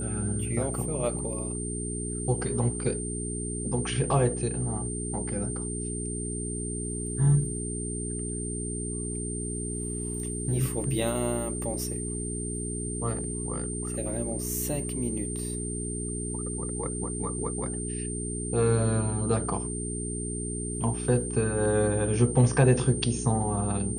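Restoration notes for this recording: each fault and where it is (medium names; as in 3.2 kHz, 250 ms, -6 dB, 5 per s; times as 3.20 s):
hum 60 Hz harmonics 7 -34 dBFS
whine 8.9 kHz -35 dBFS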